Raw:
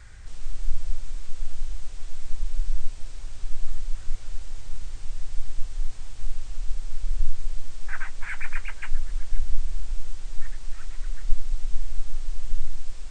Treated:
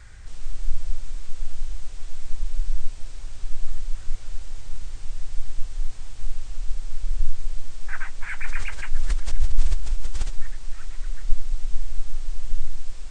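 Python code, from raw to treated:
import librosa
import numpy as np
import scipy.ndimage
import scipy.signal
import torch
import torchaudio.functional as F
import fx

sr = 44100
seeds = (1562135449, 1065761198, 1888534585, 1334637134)

y = fx.sustainer(x, sr, db_per_s=38.0, at=(8.39, 10.42))
y = y * librosa.db_to_amplitude(1.0)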